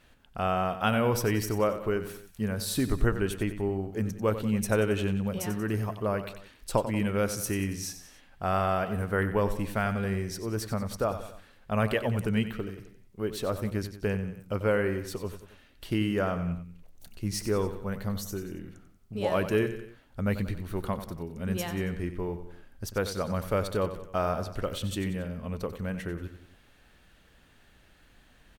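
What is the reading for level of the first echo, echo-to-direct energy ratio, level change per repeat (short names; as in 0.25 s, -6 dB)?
-11.5 dB, -10.5 dB, -6.0 dB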